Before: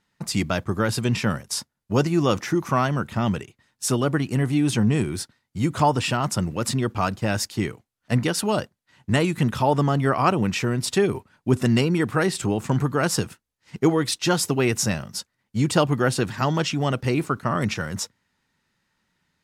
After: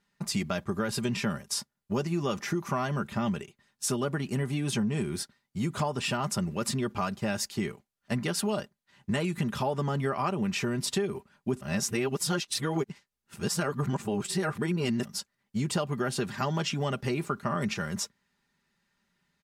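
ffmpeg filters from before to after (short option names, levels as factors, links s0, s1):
-filter_complex "[0:a]asplit=3[s0][s1][s2];[s0]atrim=end=11.612[s3];[s1]atrim=start=11.608:end=15.052,asetpts=PTS-STARTPTS,areverse[s4];[s2]atrim=start=15.048[s5];[s3][s4]acrossfade=d=0.004:c1=hsin:c2=hsin[s6];[s6][s5]acrossfade=d=0.004:c1=hsin:c2=hsin,aecho=1:1:5:0.53,acompressor=threshold=0.0891:ratio=6,volume=0.596"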